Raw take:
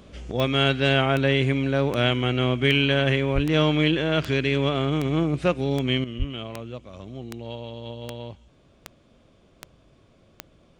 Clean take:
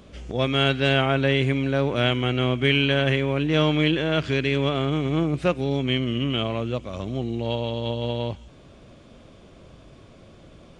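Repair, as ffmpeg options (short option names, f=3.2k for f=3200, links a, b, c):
-filter_complex "[0:a]adeclick=t=4,asplit=3[a][b][c];[a]afade=t=out:st=3.34:d=0.02[d];[b]highpass=f=140:w=0.5412,highpass=f=140:w=1.3066,afade=t=in:st=3.34:d=0.02,afade=t=out:st=3.46:d=0.02[e];[c]afade=t=in:st=3.46:d=0.02[f];[d][e][f]amix=inputs=3:normalize=0,asplit=3[g][h][i];[g]afade=t=out:st=6.18:d=0.02[j];[h]highpass=f=140:w=0.5412,highpass=f=140:w=1.3066,afade=t=in:st=6.18:d=0.02,afade=t=out:st=6.3:d=0.02[k];[i]afade=t=in:st=6.3:d=0.02[l];[j][k][l]amix=inputs=3:normalize=0,asetnsamples=n=441:p=0,asendcmd='6.04 volume volume 9dB',volume=0dB"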